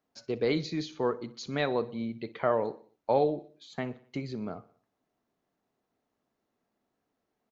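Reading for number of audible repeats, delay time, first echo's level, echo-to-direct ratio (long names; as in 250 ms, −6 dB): 3, 61 ms, −20.0 dB, −18.5 dB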